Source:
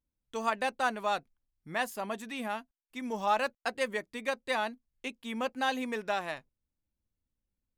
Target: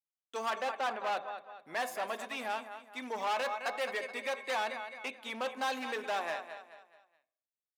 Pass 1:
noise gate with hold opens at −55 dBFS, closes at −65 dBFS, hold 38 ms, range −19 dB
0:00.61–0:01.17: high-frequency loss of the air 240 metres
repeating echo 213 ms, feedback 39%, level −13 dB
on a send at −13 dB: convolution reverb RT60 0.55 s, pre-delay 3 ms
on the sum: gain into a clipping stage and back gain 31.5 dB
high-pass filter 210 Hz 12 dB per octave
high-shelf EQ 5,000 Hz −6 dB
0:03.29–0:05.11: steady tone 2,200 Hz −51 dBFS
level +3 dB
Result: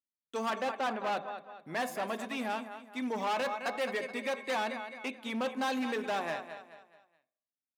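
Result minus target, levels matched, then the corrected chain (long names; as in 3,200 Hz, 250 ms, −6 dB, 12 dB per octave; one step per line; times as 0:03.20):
250 Hz band +9.0 dB
noise gate with hold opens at −55 dBFS, closes at −65 dBFS, hold 38 ms, range −19 dB
0:00.61–0:01.17: high-frequency loss of the air 240 metres
repeating echo 213 ms, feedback 39%, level −13 dB
on a send at −13 dB: convolution reverb RT60 0.55 s, pre-delay 3 ms
on the sum: gain into a clipping stage and back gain 31.5 dB
high-pass filter 490 Hz 12 dB per octave
high-shelf EQ 5,000 Hz −6 dB
0:03.29–0:05.11: steady tone 2,200 Hz −51 dBFS
level +3 dB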